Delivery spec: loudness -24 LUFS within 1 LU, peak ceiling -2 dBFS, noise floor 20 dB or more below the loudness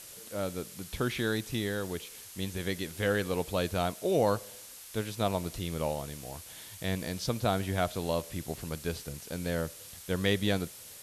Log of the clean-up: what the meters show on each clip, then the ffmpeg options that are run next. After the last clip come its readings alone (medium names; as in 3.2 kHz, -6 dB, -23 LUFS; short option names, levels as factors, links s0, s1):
noise floor -48 dBFS; noise floor target -53 dBFS; loudness -33.0 LUFS; peak level -15.5 dBFS; loudness target -24.0 LUFS
-> -af "afftdn=nr=6:nf=-48"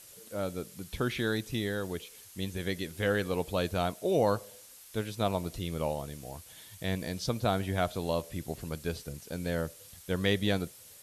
noise floor -53 dBFS; loudness -33.0 LUFS; peak level -15.5 dBFS; loudness target -24.0 LUFS
-> -af "volume=2.82"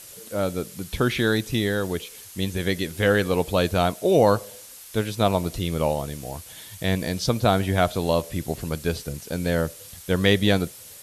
loudness -24.0 LUFS; peak level -6.5 dBFS; noise floor -44 dBFS